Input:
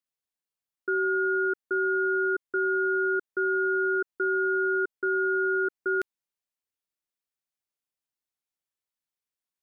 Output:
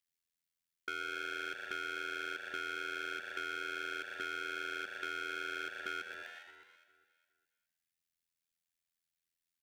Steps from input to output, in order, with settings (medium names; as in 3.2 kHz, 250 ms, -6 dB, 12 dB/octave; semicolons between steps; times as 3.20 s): overload inside the chain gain 26 dB; high-order bell 580 Hz -14.5 dB 2.3 oct; frequency-shifting echo 123 ms, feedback 56%, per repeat +110 Hz, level -11 dB; AM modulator 84 Hz, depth 95%; echo whose repeats swap between lows and highs 205 ms, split 1.5 kHz, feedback 50%, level -13 dB; compression 3:1, threshold -44 dBFS, peak gain reduction 8 dB; trim +5.5 dB